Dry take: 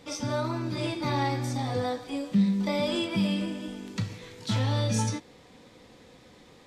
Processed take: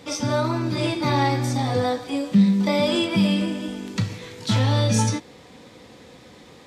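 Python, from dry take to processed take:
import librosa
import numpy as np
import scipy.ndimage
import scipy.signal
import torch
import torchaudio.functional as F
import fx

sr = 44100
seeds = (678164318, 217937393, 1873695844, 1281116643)

y = scipy.signal.sosfilt(scipy.signal.butter(2, 55.0, 'highpass', fs=sr, output='sos'), x)
y = y * 10.0 ** (7.0 / 20.0)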